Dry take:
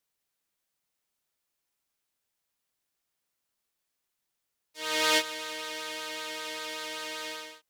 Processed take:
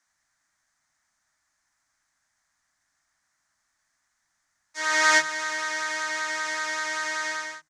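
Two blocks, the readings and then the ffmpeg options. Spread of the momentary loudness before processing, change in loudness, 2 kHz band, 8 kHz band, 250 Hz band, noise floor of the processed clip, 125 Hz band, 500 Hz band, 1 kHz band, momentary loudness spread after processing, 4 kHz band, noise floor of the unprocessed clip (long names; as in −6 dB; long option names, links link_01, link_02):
12 LU, +6.5 dB, +10.5 dB, +6.5 dB, 0.0 dB, −76 dBFS, can't be measured, +1.0 dB, +8.0 dB, 10 LU, 0.0 dB, −83 dBFS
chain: -filter_complex "[0:a]firequalizer=gain_entry='entry(300,0);entry(440,-18);entry(630,2);entry(1800,12);entry(2700,-7);entry(6300,7);entry(14000,-21)':delay=0.05:min_phase=1,acrossover=split=190[link_01][link_02];[link_01]adelay=60[link_03];[link_03][link_02]amix=inputs=2:normalize=0,asplit=2[link_04][link_05];[link_05]acompressor=threshold=-37dB:ratio=6,volume=2dB[link_06];[link_04][link_06]amix=inputs=2:normalize=0,lowshelf=frequency=180:gain=3.5"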